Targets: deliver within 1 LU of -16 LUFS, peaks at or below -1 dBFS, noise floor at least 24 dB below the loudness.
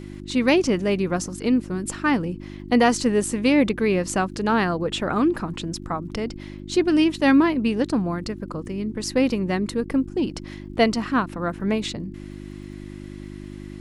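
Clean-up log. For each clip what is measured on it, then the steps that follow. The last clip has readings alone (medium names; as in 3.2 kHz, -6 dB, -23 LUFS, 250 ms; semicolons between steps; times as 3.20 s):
tick rate 54 per s; hum 50 Hz; highest harmonic 350 Hz; hum level -37 dBFS; loudness -22.5 LUFS; peak level -5.5 dBFS; loudness target -16.0 LUFS
-> de-click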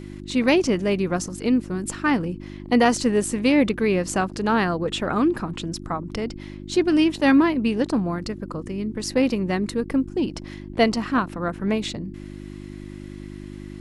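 tick rate 0.22 per s; hum 50 Hz; highest harmonic 350 Hz; hum level -37 dBFS
-> de-hum 50 Hz, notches 7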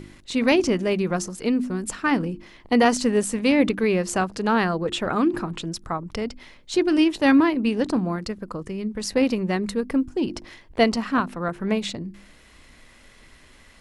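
hum not found; loudness -23.0 LUFS; peak level -5.5 dBFS; loudness target -16.0 LUFS
-> trim +7 dB; peak limiter -1 dBFS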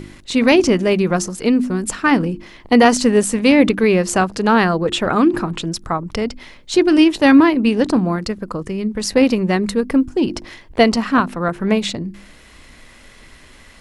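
loudness -16.5 LUFS; peak level -1.0 dBFS; noise floor -45 dBFS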